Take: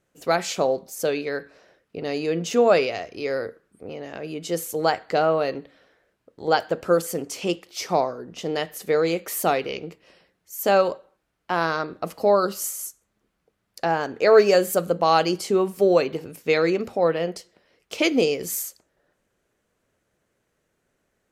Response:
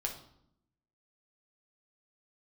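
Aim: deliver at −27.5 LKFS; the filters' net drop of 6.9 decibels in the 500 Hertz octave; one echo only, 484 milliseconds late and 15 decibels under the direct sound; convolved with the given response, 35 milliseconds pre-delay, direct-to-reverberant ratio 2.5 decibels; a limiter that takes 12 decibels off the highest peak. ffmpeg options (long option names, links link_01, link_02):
-filter_complex "[0:a]equalizer=frequency=500:width_type=o:gain=-8.5,alimiter=limit=-20.5dB:level=0:latency=1,aecho=1:1:484:0.178,asplit=2[link_01][link_02];[1:a]atrim=start_sample=2205,adelay=35[link_03];[link_02][link_03]afir=irnorm=-1:irlink=0,volume=-4dB[link_04];[link_01][link_04]amix=inputs=2:normalize=0,volume=2dB"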